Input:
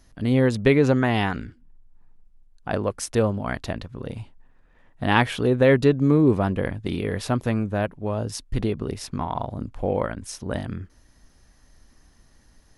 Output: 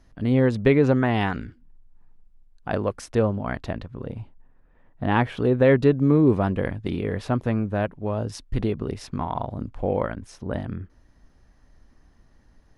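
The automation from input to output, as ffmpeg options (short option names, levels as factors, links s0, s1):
-af "asetnsamples=n=441:p=0,asendcmd='1.21 lowpass f 4300;3.01 lowpass f 2100;4.05 lowpass f 1100;5.37 lowpass f 2300;6.15 lowpass f 3900;6.9 lowpass f 2000;7.68 lowpass f 3400;10.16 lowpass f 1600',lowpass=f=2300:p=1"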